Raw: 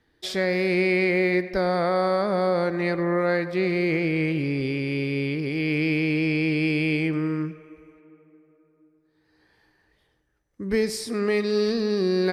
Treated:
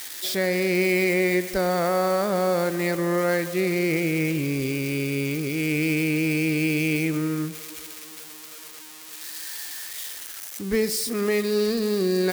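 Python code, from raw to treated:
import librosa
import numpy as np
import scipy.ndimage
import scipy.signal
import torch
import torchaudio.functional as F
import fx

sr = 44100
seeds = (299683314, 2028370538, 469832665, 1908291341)

y = x + 0.5 * 10.0 ** (-23.5 / 20.0) * np.diff(np.sign(x), prepend=np.sign(x[:1]))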